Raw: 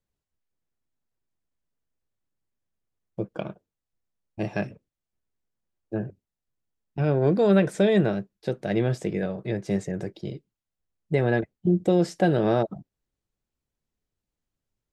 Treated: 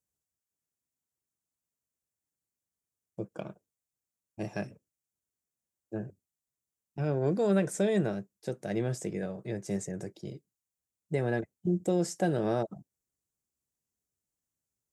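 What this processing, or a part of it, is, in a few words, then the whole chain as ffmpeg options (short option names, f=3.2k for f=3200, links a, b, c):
budget condenser microphone: -af "highpass=68,highshelf=f=5.2k:t=q:w=1.5:g=10,volume=-7dB"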